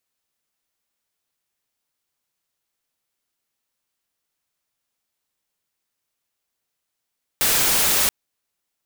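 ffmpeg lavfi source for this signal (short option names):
-f lavfi -i "anoisesrc=c=white:a=0.206:d=0.68:r=44100:seed=1"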